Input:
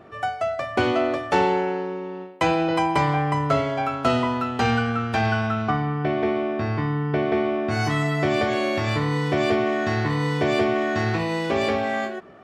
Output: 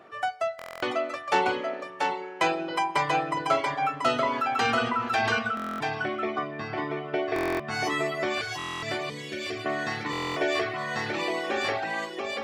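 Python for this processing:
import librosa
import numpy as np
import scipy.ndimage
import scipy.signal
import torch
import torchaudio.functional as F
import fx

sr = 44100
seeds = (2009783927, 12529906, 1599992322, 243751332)

p1 = fx.peak_eq(x, sr, hz=930.0, db=-13.5, octaves=2.0, at=(8.41, 9.66))
p2 = p1 + fx.echo_single(p1, sr, ms=685, db=-3.5, dry=0)
p3 = fx.dereverb_blind(p2, sr, rt60_s=1.3)
p4 = fx.highpass(p3, sr, hz=650.0, slope=6)
p5 = fx.buffer_glitch(p4, sr, at_s=(0.57, 5.55, 7.34, 8.57, 10.11), block=1024, repeats=10)
y = fx.env_flatten(p5, sr, amount_pct=50, at=(4.23, 5.39))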